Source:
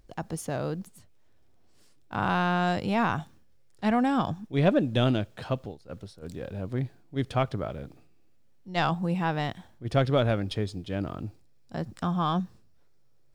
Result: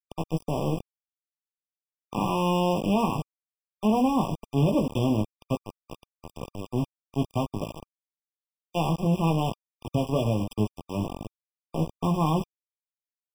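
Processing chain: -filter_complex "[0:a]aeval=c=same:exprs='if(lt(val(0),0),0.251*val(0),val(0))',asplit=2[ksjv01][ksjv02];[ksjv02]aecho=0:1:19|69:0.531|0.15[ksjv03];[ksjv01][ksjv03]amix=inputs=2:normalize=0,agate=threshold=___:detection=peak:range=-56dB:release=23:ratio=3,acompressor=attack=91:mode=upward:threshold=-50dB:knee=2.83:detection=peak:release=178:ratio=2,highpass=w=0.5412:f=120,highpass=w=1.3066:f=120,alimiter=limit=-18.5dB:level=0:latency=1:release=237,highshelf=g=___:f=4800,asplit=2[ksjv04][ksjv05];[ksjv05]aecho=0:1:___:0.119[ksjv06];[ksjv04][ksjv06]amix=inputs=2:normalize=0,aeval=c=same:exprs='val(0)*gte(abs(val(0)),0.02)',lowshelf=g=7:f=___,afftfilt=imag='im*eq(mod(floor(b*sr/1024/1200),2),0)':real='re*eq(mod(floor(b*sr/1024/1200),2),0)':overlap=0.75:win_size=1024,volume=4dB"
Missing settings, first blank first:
-47dB, -5.5, 82, 210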